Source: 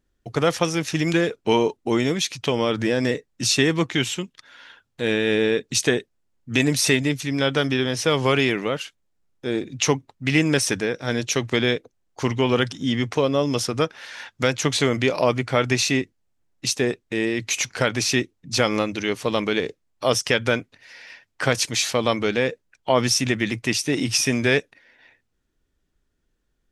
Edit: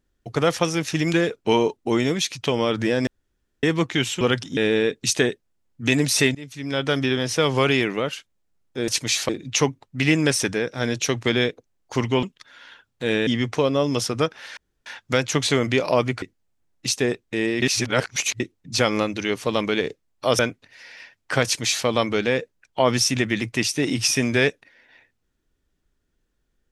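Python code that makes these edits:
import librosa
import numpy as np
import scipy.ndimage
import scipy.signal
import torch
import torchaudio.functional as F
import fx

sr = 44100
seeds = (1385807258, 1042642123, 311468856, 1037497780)

y = fx.edit(x, sr, fx.room_tone_fill(start_s=3.07, length_s=0.56),
    fx.swap(start_s=4.21, length_s=1.04, other_s=12.5, other_length_s=0.36),
    fx.fade_in_from(start_s=7.03, length_s=0.63, floor_db=-22.0),
    fx.insert_room_tone(at_s=14.16, length_s=0.29),
    fx.cut(start_s=15.52, length_s=0.49),
    fx.reverse_span(start_s=17.41, length_s=0.78),
    fx.cut(start_s=20.18, length_s=0.31),
    fx.duplicate(start_s=21.55, length_s=0.41, to_s=9.56), tone=tone)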